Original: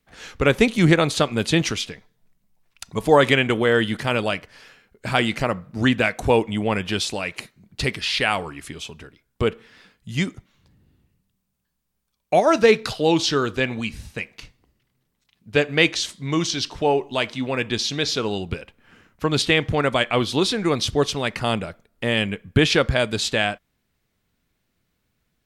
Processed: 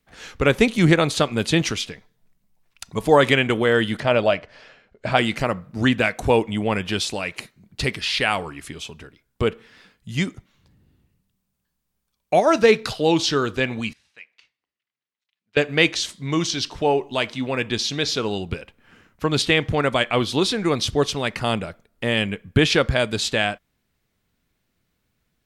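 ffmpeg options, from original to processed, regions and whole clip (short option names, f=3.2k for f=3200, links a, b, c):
-filter_complex "[0:a]asettb=1/sr,asplit=3[a][b][c];[a]atrim=end=4.004[d];[b]atrim=start=4:end=5.17,asetpts=PTS-STARTPTS,afade=t=in:d=0.004:c=qsin,afade=t=out:st=1.166:d=0.004:c=qsin,lowpass=4.9k,equalizer=f=620:w=3.2:g=9.5[e];[c]atrim=start=5.166[f];[d][e]acrossfade=d=0.004:c1=hsin:c2=qsin[g];[g][f]acrossfade=d=0.004:c1=qsin:c2=hsin,asettb=1/sr,asplit=3[h][i][j];[h]atrim=end=13.934[k];[i]atrim=start=13.93:end=15.57,asetpts=PTS-STARTPTS,afade=t=in:d=0.004:c=qsin,afade=t=out:st=1.636:d=0.004:c=qsin,lowpass=2.5k,aderivative[l];[j]atrim=start=15.566[m];[k][l]acrossfade=d=0.004:c1=hsin:c2=qsin[n];[n][m]acrossfade=d=0.004:c1=qsin:c2=hsin"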